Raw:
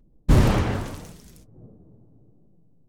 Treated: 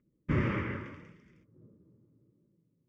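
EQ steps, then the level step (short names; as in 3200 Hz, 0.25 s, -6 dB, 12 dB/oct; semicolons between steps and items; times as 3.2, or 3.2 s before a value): speaker cabinet 110–4300 Hz, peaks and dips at 350 Hz +5 dB, 590 Hz +9 dB, 1200 Hz +4 dB, 2100 Hz +9 dB, 3800 Hz +5 dB; fixed phaser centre 1700 Hz, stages 4; -9.0 dB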